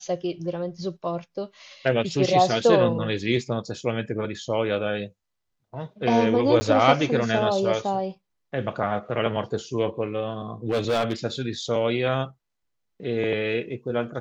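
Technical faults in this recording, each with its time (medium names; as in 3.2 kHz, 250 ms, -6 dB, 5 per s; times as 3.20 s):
6.60–6.61 s: dropout 10 ms
10.69–11.13 s: clipped -18.5 dBFS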